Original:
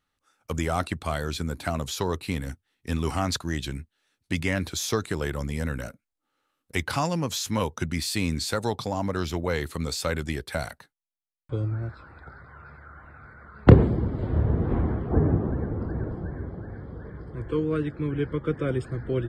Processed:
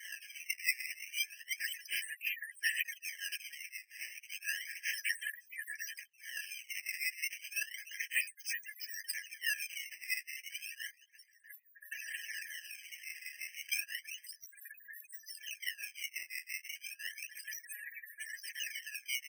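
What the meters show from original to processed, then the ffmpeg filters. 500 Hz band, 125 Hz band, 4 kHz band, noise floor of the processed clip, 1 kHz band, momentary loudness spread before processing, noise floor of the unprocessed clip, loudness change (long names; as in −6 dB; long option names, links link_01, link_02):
below −40 dB, below −40 dB, −6.0 dB, −66 dBFS, below −40 dB, 15 LU, −82 dBFS, −12.0 dB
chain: -filter_complex "[0:a]aeval=exprs='val(0)+0.5*0.141*sgn(val(0))':channel_layout=same,afftfilt=real='re*gte(hypot(re,im),0.0794)':imag='im*gte(hypot(re,im),0.0794)':win_size=1024:overlap=0.75,asplit=2[link_01][link_02];[link_02]adelay=640,lowpass=frequency=940:poles=1,volume=-18.5dB,asplit=2[link_03][link_04];[link_04]adelay=640,lowpass=frequency=940:poles=1,volume=0.31,asplit=2[link_05][link_06];[link_06]adelay=640,lowpass=frequency=940:poles=1,volume=0.31[link_07];[link_03][link_05][link_07]amix=inputs=3:normalize=0[link_08];[link_01][link_08]amix=inputs=2:normalize=0,aresample=32000,aresample=44100,asplit=3[link_09][link_10][link_11];[link_09]bandpass=frequency=530:width_type=q:width=8,volume=0dB[link_12];[link_10]bandpass=frequency=1840:width_type=q:width=8,volume=-6dB[link_13];[link_11]bandpass=frequency=2480:width_type=q:width=8,volume=-9dB[link_14];[link_12][link_13][link_14]amix=inputs=3:normalize=0,bass=frequency=250:gain=-6,treble=frequency=4000:gain=14,acrossover=split=1500[link_15][link_16];[link_15]aeval=exprs='val(0)*(1-1/2+1/2*cos(2*PI*5.8*n/s))':channel_layout=same[link_17];[link_16]aeval=exprs='val(0)*(1-1/2-1/2*cos(2*PI*5.8*n/s))':channel_layout=same[link_18];[link_17][link_18]amix=inputs=2:normalize=0,asplit=2[link_19][link_20];[link_20]adelay=12,volume=-6dB[link_21];[link_19][link_21]amix=inputs=2:normalize=0,acrusher=samples=16:mix=1:aa=0.000001:lfo=1:lforange=25.6:lforate=0.32,equalizer=frequency=4000:width_type=o:width=0.43:gain=-5,afftfilt=real='re*eq(mod(floor(b*sr/1024/1600),2),1)':imag='im*eq(mod(floor(b*sr/1024/1600),2),1)':win_size=1024:overlap=0.75,volume=7.5dB"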